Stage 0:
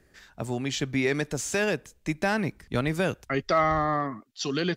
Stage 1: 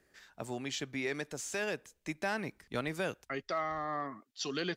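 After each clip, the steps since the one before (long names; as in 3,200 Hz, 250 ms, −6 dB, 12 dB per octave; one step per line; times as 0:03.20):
low-shelf EQ 190 Hz −11.5 dB
speech leveller within 4 dB 0.5 s
level −8 dB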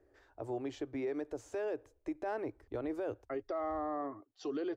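drawn EQ curve 110 Hz 0 dB, 180 Hz −30 dB, 300 Hz +1 dB, 730 Hz −3 dB, 2,100 Hz −18 dB, 3,900 Hz −22 dB, 6,000 Hz −23 dB, 8,600 Hz −25 dB
brickwall limiter −35.5 dBFS, peak gain reduction 7.5 dB
level +6 dB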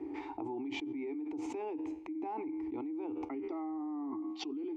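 formant filter u
tuned comb filter 79 Hz, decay 0.49 s, harmonics all, mix 50%
envelope flattener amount 100%
level +1 dB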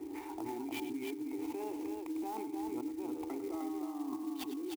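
multi-tap delay 101/306 ms −11/−4.5 dB
converter with an unsteady clock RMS 0.036 ms
level −2 dB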